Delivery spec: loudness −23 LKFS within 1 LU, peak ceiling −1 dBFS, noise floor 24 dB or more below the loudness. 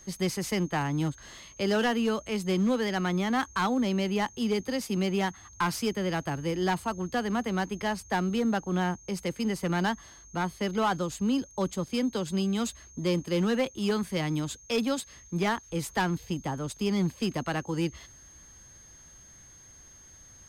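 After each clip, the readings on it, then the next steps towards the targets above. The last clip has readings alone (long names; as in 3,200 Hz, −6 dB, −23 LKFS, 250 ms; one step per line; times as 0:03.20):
share of clipped samples 0.7%; peaks flattened at −20.5 dBFS; interfering tone 6,400 Hz; level of the tone −51 dBFS; integrated loudness −29.5 LKFS; sample peak −20.5 dBFS; target loudness −23.0 LKFS
→ clipped peaks rebuilt −20.5 dBFS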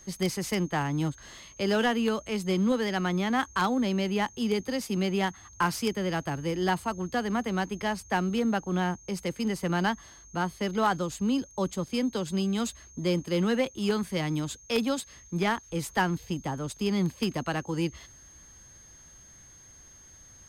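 share of clipped samples 0.0%; interfering tone 6,400 Hz; level of the tone −51 dBFS
→ notch filter 6,400 Hz, Q 30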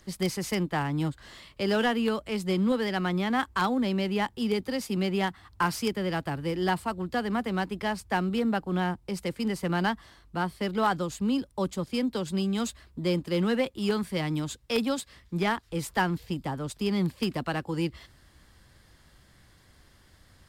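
interfering tone none found; integrated loudness −29.0 LKFS; sample peak −11.5 dBFS; target loudness −23.0 LKFS
→ level +6 dB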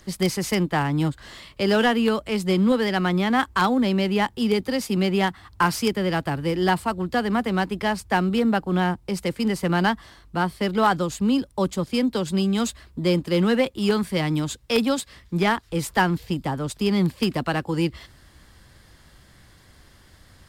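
integrated loudness −23.0 LKFS; sample peak −5.5 dBFS; background noise floor −53 dBFS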